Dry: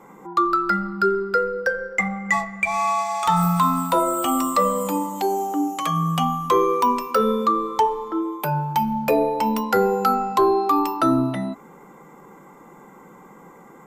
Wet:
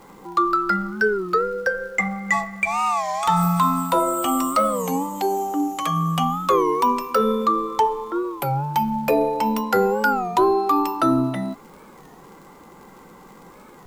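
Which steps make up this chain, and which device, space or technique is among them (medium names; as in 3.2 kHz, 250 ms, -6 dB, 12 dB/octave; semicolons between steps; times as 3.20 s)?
warped LP (warped record 33 1/3 rpm, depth 160 cents; crackle; pink noise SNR 35 dB)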